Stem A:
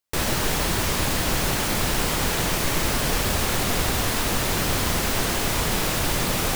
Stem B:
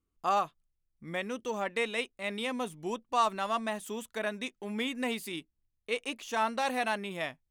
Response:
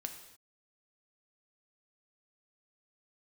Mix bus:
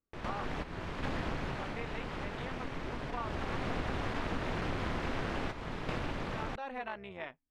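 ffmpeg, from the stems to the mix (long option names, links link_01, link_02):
-filter_complex "[0:a]dynaudnorm=framelen=120:gausssize=11:maxgain=11.5dB,volume=8dB,afade=type=out:start_time=1.2:duration=0.56:silence=0.266073,afade=type=in:start_time=3.17:duration=0.62:silence=0.223872,asplit=2[link_01][link_02];[link_02]volume=-11dB[link_03];[1:a]lowshelf=frequency=260:gain=-6.5,volume=-1.5dB,asplit=2[link_04][link_05];[link_05]apad=whole_len=289095[link_06];[link_01][link_06]sidechaingate=range=-19dB:threshold=-55dB:ratio=16:detection=peak[link_07];[2:a]atrim=start_sample=2205[link_08];[link_03][link_08]afir=irnorm=-1:irlink=0[link_09];[link_07][link_04][link_09]amix=inputs=3:normalize=0,lowpass=2300,tremolo=f=270:d=0.71,acompressor=threshold=-36dB:ratio=3"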